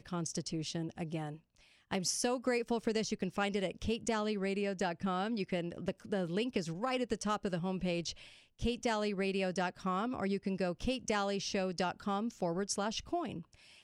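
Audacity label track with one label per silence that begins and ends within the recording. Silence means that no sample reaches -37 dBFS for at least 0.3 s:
1.300000	1.910000	silence
8.110000	8.620000	silence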